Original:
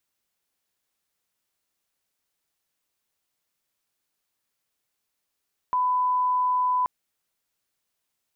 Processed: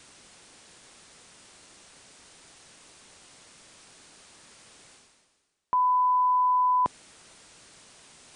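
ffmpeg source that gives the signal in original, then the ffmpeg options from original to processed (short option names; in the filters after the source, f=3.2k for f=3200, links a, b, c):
-f lavfi -i "sine=f=1000:d=1.13:r=44100,volume=-1.94dB"
-af "equalizer=f=250:t=o:w=2.8:g=4,areverse,acompressor=mode=upward:threshold=-26dB:ratio=2.5,areverse" -ar 22050 -c:a libmp3lame -b:a 160k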